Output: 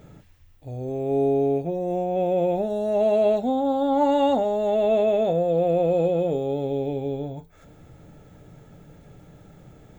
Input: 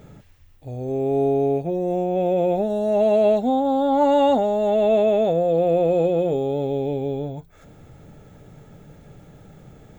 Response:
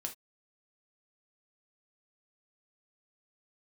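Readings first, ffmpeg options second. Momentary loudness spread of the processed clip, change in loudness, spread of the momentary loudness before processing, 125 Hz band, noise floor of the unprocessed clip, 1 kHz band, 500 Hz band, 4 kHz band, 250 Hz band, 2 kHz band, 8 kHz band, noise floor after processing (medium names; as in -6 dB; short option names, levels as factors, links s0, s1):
9 LU, -2.5 dB, 9 LU, -2.0 dB, -50 dBFS, -3.0 dB, -2.5 dB, -2.5 dB, -2.5 dB, -2.5 dB, no reading, -52 dBFS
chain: -filter_complex "[0:a]asplit=2[s0][s1];[1:a]atrim=start_sample=2205[s2];[s1][s2]afir=irnorm=-1:irlink=0,volume=0.668[s3];[s0][s3]amix=inputs=2:normalize=0,volume=0.501"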